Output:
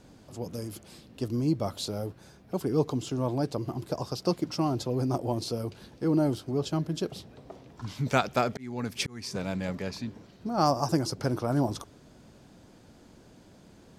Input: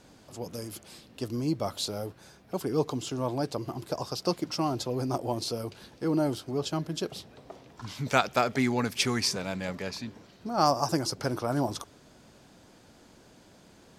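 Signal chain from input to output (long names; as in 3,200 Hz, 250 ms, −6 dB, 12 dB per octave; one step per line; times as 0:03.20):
low-shelf EQ 450 Hz +7.5 dB
0:08.50–0:09.35: volume swells 509 ms
level −3 dB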